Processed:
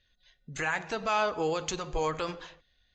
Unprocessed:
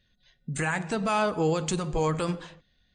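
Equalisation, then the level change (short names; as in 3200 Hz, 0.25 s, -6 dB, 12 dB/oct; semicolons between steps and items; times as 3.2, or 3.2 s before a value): elliptic low-pass 6700 Hz, stop band 40 dB; bell 180 Hz -12 dB 1.5 oct; 0.0 dB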